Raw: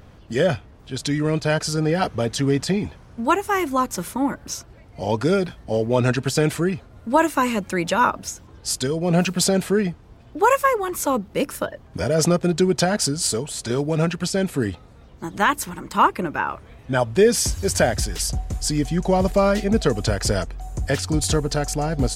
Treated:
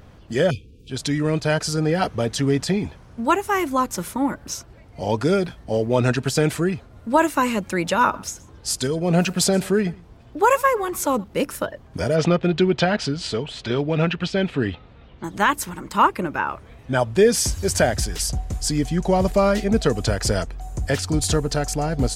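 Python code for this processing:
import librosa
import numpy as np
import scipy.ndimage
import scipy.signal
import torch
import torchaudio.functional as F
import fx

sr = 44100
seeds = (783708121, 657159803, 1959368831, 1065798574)

y = fx.spec_erase(x, sr, start_s=0.51, length_s=0.39, low_hz=520.0, high_hz=2300.0)
y = fx.echo_single(y, sr, ms=123, db=-23.0, at=(7.86, 11.24))
y = fx.lowpass_res(y, sr, hz=3100.0, q=2.0, at=(12.16, 15.24))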